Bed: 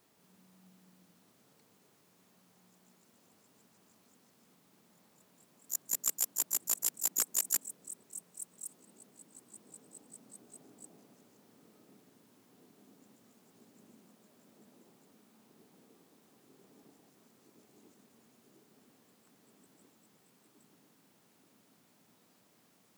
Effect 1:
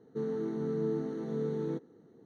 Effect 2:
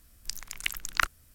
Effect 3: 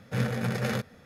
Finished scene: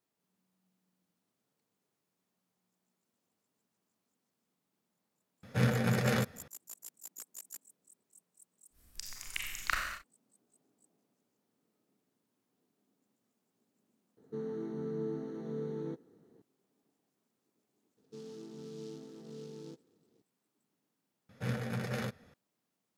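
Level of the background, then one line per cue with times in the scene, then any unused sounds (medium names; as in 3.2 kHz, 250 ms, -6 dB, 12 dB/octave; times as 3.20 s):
bed -17 dB
5.43 s: add 3 -0.5 dB
8.70 s: add 2 -8.5 dB, fades 0.10 s + Schroeder reverb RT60 1.2 s, combs from 30 ms, DRR -0.5 dB
14.17 s: add 1 -5 dB
17.97 s: add 1 -13.5 dB + delay time shaken by noise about 4.4 kHz, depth 0.059 ms
21.29 s: replace with 3 -7.5 dB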